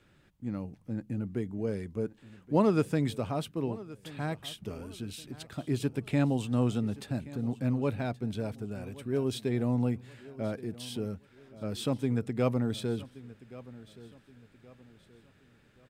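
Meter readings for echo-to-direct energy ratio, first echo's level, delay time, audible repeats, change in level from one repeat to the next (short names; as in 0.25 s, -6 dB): -18.0 dB, -18.5 dB, 1.125 s, 2, -8.5 dB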